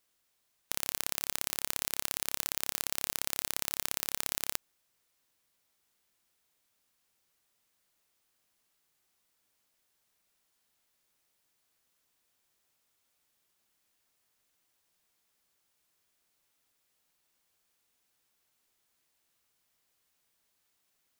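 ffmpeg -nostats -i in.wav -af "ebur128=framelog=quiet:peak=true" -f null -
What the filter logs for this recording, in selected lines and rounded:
Integrated loudness:
  I:         -33.0 LUFS
  Threshold: -43.0 LUFS
Loudness range:
  LRA:         8.1 LU
  Threshold: -54.5 LUFS
  LRA low:   -40.8 LUFS
  LRA high:  -32.6 LUFS
True peak:
  Peak:       -2.7 dBFS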